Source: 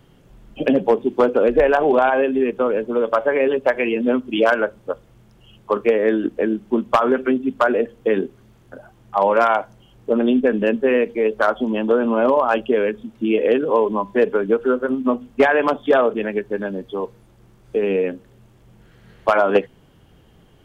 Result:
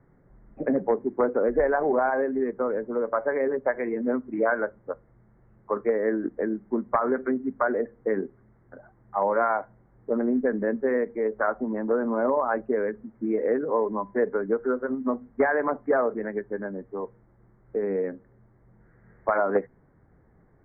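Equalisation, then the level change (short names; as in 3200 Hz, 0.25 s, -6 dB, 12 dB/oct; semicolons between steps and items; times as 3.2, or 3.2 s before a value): steep low-pass 2100 Hz 96 dB/oct; -7.5 dB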